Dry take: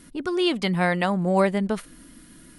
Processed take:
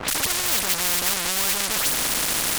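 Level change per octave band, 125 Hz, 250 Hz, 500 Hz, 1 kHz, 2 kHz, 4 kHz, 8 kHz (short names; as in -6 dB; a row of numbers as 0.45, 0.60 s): -11.0, -12.5, -10.0, -2.0, +3.0, +9.5, +26.0 dB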